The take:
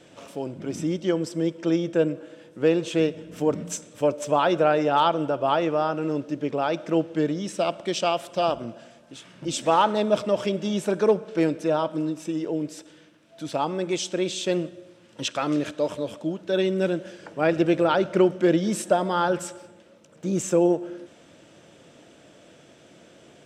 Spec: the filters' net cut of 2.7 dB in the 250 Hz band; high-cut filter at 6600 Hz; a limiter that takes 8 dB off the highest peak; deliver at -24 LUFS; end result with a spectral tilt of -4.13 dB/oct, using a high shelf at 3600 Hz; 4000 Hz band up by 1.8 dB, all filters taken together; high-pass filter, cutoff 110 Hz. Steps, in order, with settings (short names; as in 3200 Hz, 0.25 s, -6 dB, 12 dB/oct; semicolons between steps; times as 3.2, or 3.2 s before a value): HPF 110 Hz; LPF 6600 Hz; bell 250 Hz -4 dB; high shelf 3600 Hz -5 dB; bell 4000 Hz +6 dB; gain +4 dB; limiter -11.5 dBFS